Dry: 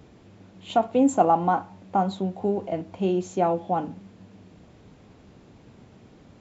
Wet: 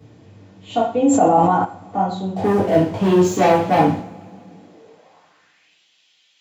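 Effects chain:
0:02.36–0:03.99: leveller curve on the samples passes 3
high-pass filter sweep 100 Hz → 3,100 Hz, 0:04.16–0:05.77
coupled-rooms reverb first 0.46 s, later 2.5 s, from −26 dB, DRR −7.5 dB
0:01.01–0:01.65: level that may fall only so fast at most 22 dB per second
level −5 dB

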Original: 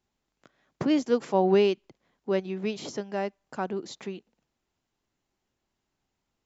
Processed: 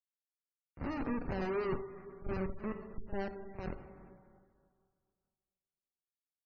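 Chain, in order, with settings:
spectrum smeared in time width 120 ms
high-pass filter 110 Hz 12 dB per octave
comparator with hysteresis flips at −29 dBFS
Bessel low-pass filter 5,600 Hz
parametric band 3,400 Hz −10.5 dB 0.26 octaves
tuned comb filter 390 Hz, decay 0.62 s, mix 60%
tape wow and flutter 19 cents
echo ahead of the sound 41 ms −12.5 dB
dense smooth reverb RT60 2.1 s, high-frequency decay 0.6×, DRR 6.5 dB
gate on every frequency bin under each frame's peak −30 dB strong
amplitude modulation by smooth noise, depth 55%
level +6.5 dB

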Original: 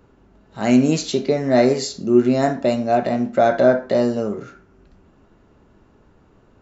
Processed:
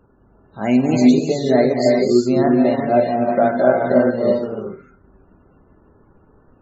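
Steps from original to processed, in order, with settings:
reverb whose tail is shaped and stops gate 410 ms rising, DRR −1 dB
spectral peaks only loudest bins 64
transient designer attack +1 dB, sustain −3 dB
level −1.5 dB

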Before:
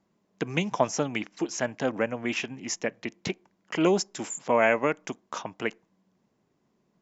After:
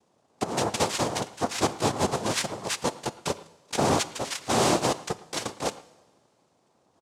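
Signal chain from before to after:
parametric band 650 Hz +8.5 dB 0.41 octaves
gain into a clipping stage and back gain 23.5 dB
cochlear-implant simulation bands 2
far-end echo of a speakerphone 110 ms, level −19 dB
coupled-rooms reverb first 0.93 s, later 3.5 s, from −20 dB, DRR 16 dB
level +3 dB

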